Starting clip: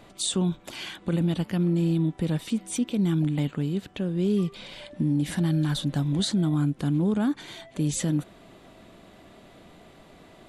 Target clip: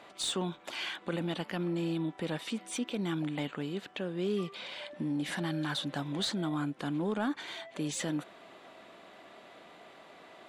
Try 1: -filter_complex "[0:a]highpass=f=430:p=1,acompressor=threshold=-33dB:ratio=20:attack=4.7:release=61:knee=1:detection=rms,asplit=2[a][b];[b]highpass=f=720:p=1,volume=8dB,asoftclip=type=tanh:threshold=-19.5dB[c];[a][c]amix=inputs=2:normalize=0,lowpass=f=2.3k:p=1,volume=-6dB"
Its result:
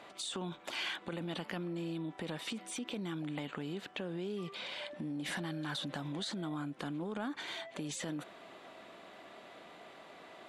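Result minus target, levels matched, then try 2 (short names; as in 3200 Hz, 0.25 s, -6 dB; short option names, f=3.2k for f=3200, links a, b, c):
compressor: peak gain reduction +11.5 dB
-filter_complex "[0:a]highpass=f=430:p=1,asplit=2[a][b];[b]highpass=f=720:p=1,volume=8dB,asoftclip=type=tanh:threshold=-19.5dB[c];[a][c]amix=inputs=2:normalize=0,lowpass=f=2.3k:p=1,volume=-6dB"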